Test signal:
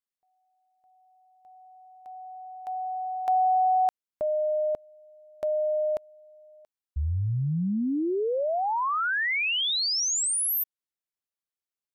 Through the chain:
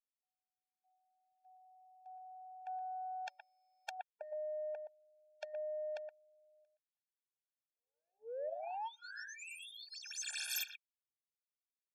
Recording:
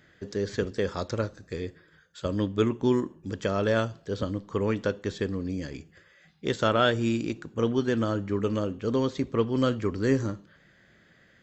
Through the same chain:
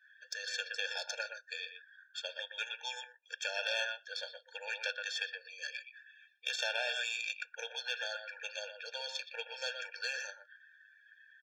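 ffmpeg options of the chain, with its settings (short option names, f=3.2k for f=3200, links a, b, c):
-filter_complex "[0:a]aemphasis=mode=production:type=cd,adynamicsmooth=sensitivity=8:basefreq=5.9k,asuperpass=centerf=3800:order=4:qfactor=0.62,acompressor=threshold=-35dB:ratio=1.5:attack=11:release=78:knee=6,asplit=2[a][b];[b]adelay=120,highpass=300,lowpass=3.4k,asoftclip=type=hard:threshold=-28.5dB,volume=-7dB[c];[a][c]amix=inputs=2:normalize=0,afftfilt=real='re*lt(hypot(re,im),0.0562)':imag='im*lt(hypot(re,im),0.0562)':win_size=1024:overlap=0.75,highshelf=f=3.4k:g=-5,afftdn=nr=19:nf=-62,aeval=exprs='0.1*(cos(1*acos(clip(val(0)/0.1,-1,1)))-cos(1*PI/2))+0.0282*(cos(2*acos(clip(val(0)/0.1,-1,1)))-cos(2*PI/2))+0.00316*(cos(4*acos(clip(val(0)/0.1,-1,1)))-cos(4*PI/2))+0.00355*(cos(8*acos(clip(val(0)/0.1,-1,1)))-cos(8*PI/2))':c=same,afftfilt=real='re*eq(mod(floor(b*sr/1024/460),2),1)':imag='im*eq(mod(floor(b*sr/1024/460),2),1)':win_size=1024:overlap=0.75,volume=9dB"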